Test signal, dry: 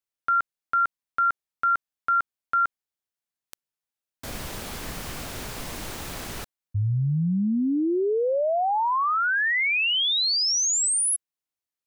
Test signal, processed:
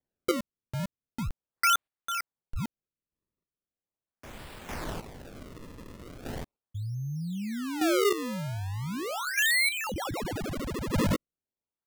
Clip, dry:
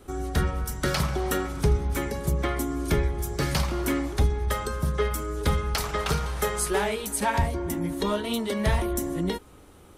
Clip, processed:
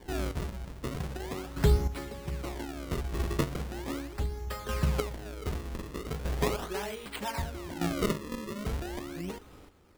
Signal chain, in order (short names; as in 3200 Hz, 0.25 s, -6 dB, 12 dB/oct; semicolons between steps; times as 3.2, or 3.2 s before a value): decimation with a swept rate 33×, swing 160% 0.39 Hz; chopper 0.64 Hz, depth 65%, duty 20%; gain -1 dB